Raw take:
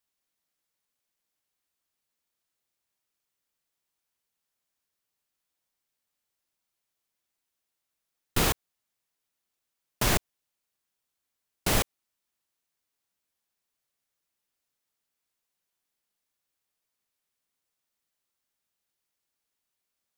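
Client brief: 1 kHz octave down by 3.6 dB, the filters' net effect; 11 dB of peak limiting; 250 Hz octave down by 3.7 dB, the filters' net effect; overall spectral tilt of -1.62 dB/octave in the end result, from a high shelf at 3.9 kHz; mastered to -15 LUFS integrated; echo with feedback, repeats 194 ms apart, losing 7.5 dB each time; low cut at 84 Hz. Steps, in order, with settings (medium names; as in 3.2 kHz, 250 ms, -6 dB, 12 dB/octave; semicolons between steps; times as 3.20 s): high-pass 84 Hz; peaking EQ 250 Hz -5 dB; peaking EQ 1 kHz -5 dB; treble shelf 3.9 kHz +6 dB; peak limiter -21.5 dBFS; feedback delay 194 ms, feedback 42%, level -7.5 dB; trim +20.5 dB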